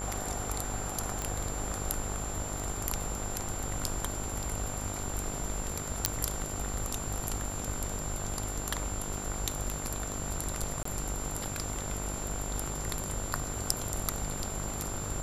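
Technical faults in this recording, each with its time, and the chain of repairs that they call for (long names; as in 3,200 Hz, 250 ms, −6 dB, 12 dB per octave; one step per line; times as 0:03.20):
mains buzz 50 Hz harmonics 31 −40 dBFS
whistle 7,300 Hz −39 dBFS
0:01.22: click −18 dBFS
0:06.06: click −7 dBFS
0:10.83–0:10.85: drop-out 24 ms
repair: click removal
hum removal 50 Hz, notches 31
notch filter 7,300 Hz, Q 30
repair the gap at 0:10.83, 24 ms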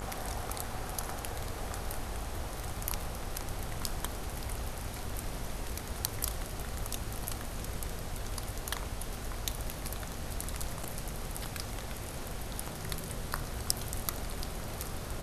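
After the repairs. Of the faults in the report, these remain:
none of them is left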